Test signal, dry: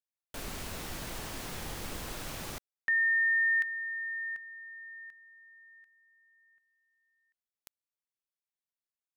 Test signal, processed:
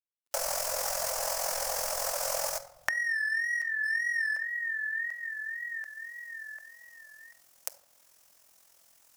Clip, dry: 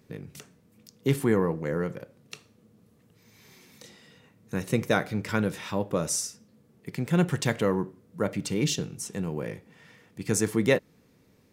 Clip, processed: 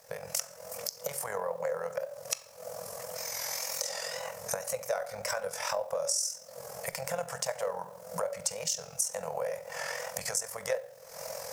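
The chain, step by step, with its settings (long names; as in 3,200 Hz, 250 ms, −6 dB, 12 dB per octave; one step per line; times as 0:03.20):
camcorder AGC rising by 42 dB per second, up to +21 dB
low shelf with overshoot 360 Hz −13.5 dB, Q 3
in parallel at −4.5 dB: hard clipping −15.5 dBFS
on the sum: tape wow and flutter 82 cents
drawn EQ curve 200 Hz 0 dB, 340 Hz −29 dB, 560 Hz +7 dB, 1,700 Hz +2 dB, 3,700 Hz −5 dB, 5,300 Hz +12 dB, 10,000 Hz +10 dB
rectangular room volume 950 cubic metres, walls furnished, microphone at 0.69 metres
downward compressor 2.5 to 1, threshold −35 dBFS
bit-depth reduction 10 bits, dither none
amplitude modulation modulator 43 Hz, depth 40%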